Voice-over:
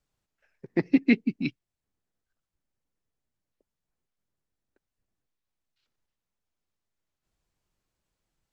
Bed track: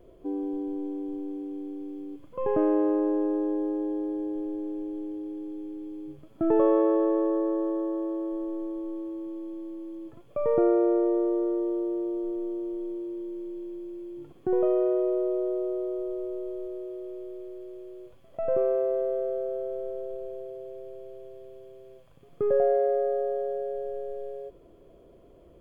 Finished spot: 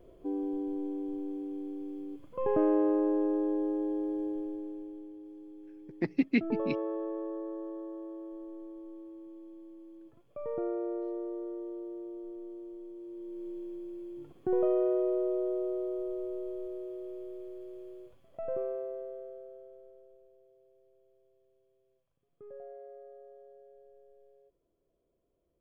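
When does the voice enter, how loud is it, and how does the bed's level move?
5.25 s, −6.0 dB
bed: 0:04.27 −2.5 dB
0:05.13 −12 dB
0:12.93 −12 dB
0:13.48 −3.5 dB
0:17.90 −3.5 dB
0:20.30 −24.5 dB

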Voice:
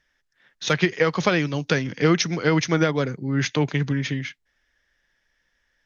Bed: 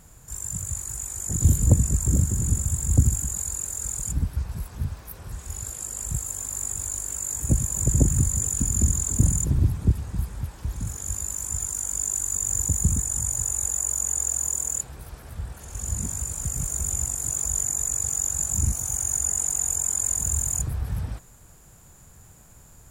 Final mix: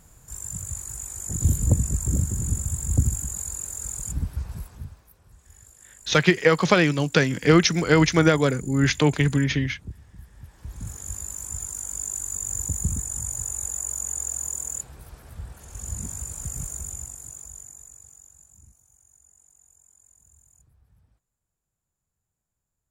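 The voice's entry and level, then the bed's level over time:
5.45 s, +2.5 dB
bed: 0:04.57 −2.5 dB
0:05.18 −17.5 dB
0:10.23 −17.5 dB
0:10.87 −4 dB
0:16.60 −4 dB
0:18.87 −33 dB

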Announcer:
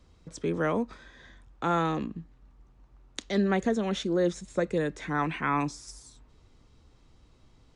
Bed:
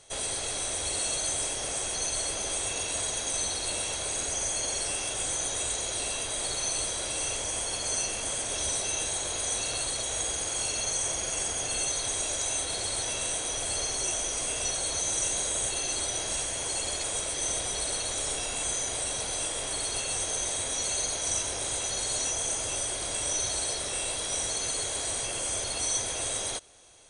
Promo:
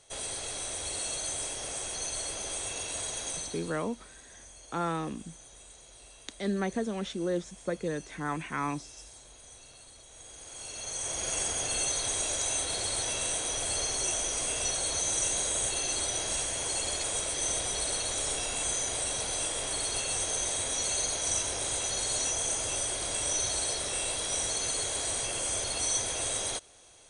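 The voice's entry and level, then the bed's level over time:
3.10 s, −5.0 dB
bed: 0:03.30 −4.5 dB
0:03.91 −21.5 dB
0:10.08 −21.5 dB
0:11.30 −0.5 dB

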